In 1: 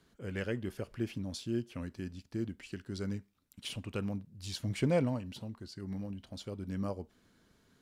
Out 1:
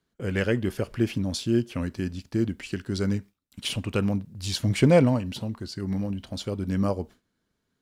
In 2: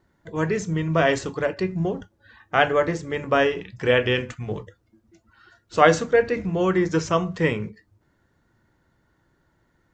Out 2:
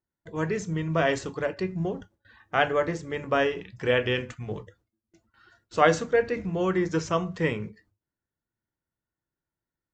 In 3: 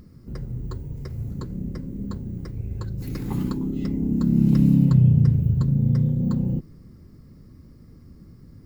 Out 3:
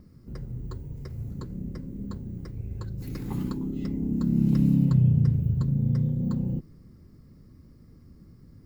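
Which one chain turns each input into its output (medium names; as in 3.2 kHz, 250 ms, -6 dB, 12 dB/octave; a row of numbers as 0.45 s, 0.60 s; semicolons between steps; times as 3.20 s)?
gate with hold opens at -47 dBFS; normalise loudness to -27 LUFS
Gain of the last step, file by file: +11.0 dB, -4.5 dB, -4.5 dB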